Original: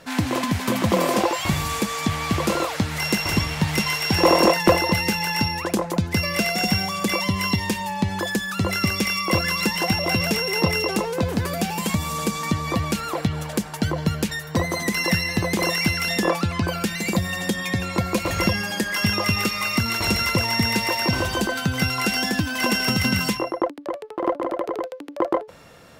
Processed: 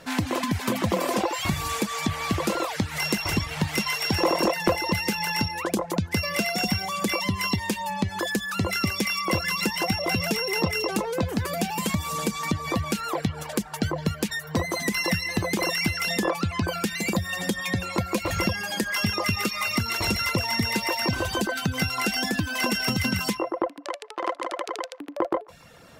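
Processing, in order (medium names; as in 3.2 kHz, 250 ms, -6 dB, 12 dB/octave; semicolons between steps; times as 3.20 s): 23.85–25.00 s: frequency weighting ITU-R 468; reverb removal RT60 0.64 s; compression 2:1, threshold -23 dBFS, peak gain reduction 7 dB; on a send: feedback echo behind a band-pass 142 ms, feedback 47%, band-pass 1.2 kHz, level -23 dB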